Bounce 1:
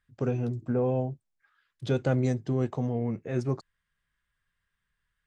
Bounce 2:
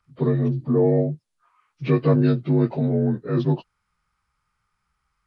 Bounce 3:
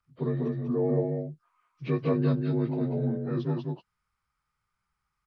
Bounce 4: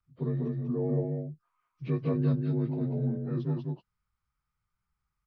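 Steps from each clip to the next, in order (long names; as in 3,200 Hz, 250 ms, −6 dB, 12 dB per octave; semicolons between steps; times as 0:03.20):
partials spread apart or drawn together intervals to 85%; level +9 dB
single-tap delay 194 ms −4 dB; level −8.5 dB
low-shelf EQ 240 Hz +10 dB; level −7.5 dB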